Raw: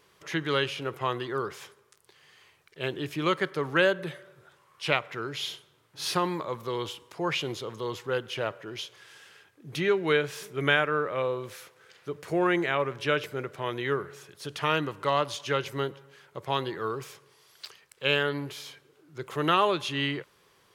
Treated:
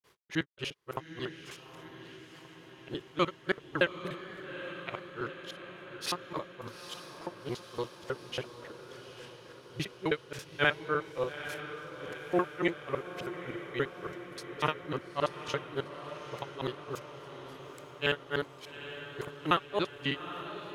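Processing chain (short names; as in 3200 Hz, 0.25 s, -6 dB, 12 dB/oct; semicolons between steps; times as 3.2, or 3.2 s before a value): local time reversal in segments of 58 ms; grains 0.177 s, grains 3.5/s, pitch spread up and down by 0 st; on a send: diffused feedback echo 0.85 s, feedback 66%, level -10.5 dB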